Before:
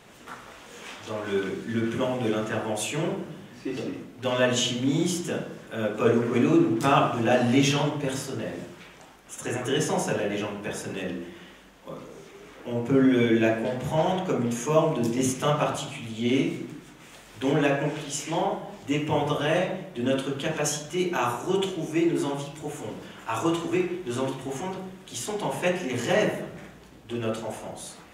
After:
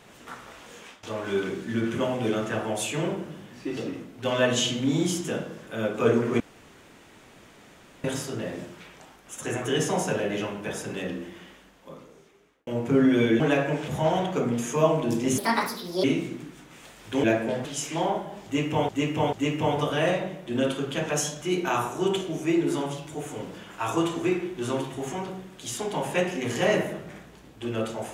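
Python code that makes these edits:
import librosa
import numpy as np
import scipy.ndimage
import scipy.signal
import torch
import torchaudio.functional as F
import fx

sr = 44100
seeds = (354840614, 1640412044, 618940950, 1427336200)

y = fx.edit(x, sr, fx.fade_out_to(start_s=0.7, length_s=0.33, floor_db=-17.0),
    fx.room_tone_fill(start_s=6.4, length_s=1.64),
    fx.fade_out_span(start_s=11.36, length_s=1.31),
    fx.swap(start_s=13.4, length_s=0.41, other_s=17.53, other_length_s=0.48),
    fx.speed_span(start_s=15.31, length_s=1.02, speed=1.55),
    fx.repeat(start_s=18.81, length_s=0.44, count=3), tone=tone)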